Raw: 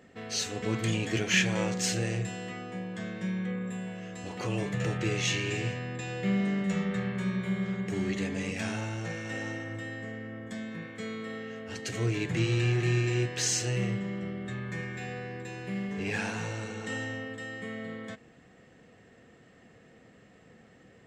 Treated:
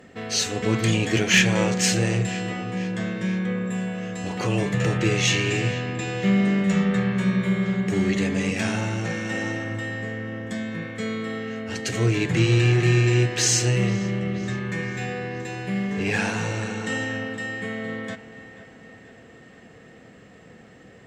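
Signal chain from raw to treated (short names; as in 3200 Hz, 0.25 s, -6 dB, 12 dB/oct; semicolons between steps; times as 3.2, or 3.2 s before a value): dark delay 0.484 s, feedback 58%, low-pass 4000 Hz, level -15.5 dB; one-sided clip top -17.5 dBFS; gain +8 dB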